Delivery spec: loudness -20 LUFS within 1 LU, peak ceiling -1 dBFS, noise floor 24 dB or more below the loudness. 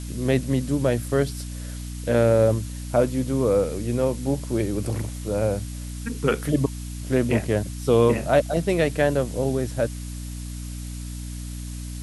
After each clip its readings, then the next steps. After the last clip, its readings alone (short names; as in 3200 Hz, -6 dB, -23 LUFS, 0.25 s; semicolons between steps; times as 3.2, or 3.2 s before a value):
hum 60 Hz; harmonics up to 300 Hz; hum level -31 dBFS; noise floor -33 dBFS; noise floor target -48 dBFS; loudness -23.5 LUFS; peak -6.0 dBFS; loudness target -20.0 LUFS
-> notches 60/120/180/240/300 Hz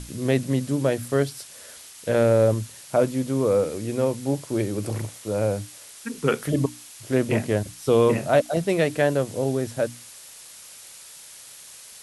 hum none; noise floor -45 dBFS; noise floor target -48 dBFS
-> denoiser 6 dB, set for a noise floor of -45 dBFS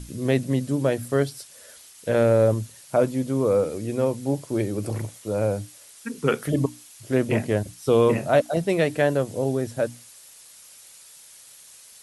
noise floor -49 dBFS; loudness -24.0 LUFS; peak -6.5 dBFS; loudness target -20.0 LUFS
-> gain +4 dB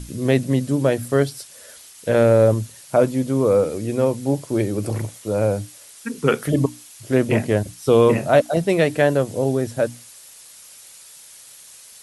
loudness -20.0 LUFS; peak -2.5 dBFS; noise floor -45 dBFS